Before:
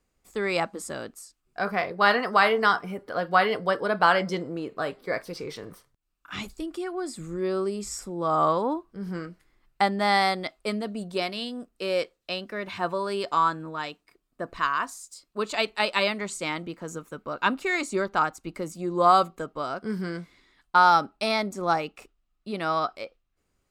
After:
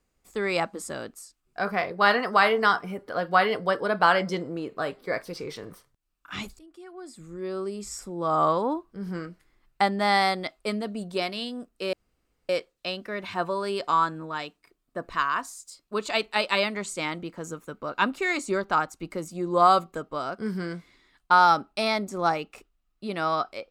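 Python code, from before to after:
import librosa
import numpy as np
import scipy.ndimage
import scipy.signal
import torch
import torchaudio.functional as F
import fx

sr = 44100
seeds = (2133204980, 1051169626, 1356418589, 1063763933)

y = fx.edit(x, sr, fx.fade_in_from(start_s=6.59, length_s=1.79, floor_db=-20.0),
    fx.insert_room_tone(at_s=11.93, length_s=0.56), tone=tone)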